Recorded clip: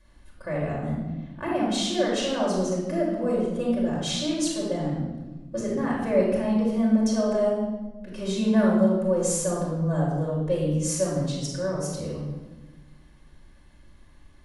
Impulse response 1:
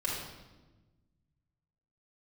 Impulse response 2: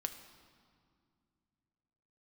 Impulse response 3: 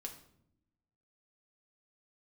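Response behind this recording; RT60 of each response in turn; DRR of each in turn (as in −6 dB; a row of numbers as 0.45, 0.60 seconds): 1; 1.2, 2.2, 0.70 seconds; −6.0, 6.5, 2.0 decibels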